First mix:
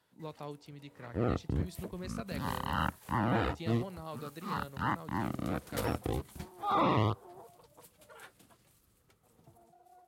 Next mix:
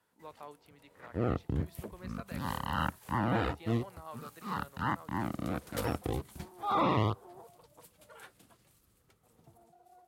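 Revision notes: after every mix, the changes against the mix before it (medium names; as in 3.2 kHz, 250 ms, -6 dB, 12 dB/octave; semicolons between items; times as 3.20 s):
speech: add band-pass filter 1.2 kHz, Q 0.84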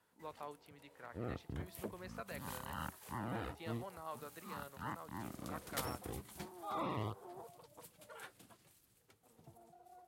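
second sound -12.0 dB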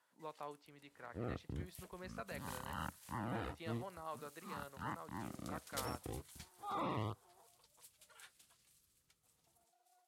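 first sound: add band-pass filter 6.3 kHz, Q 0.59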